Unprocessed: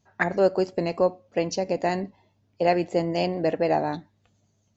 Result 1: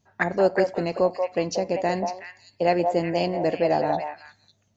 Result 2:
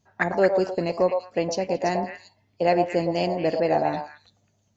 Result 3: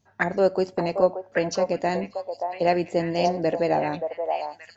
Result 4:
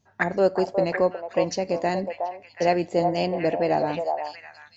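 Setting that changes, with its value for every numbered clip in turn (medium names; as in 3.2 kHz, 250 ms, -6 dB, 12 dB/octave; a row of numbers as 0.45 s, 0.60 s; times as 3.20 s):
repeats whose band climbs or falls, time: 184 ms, 112 ms, 577 ms, 365 ms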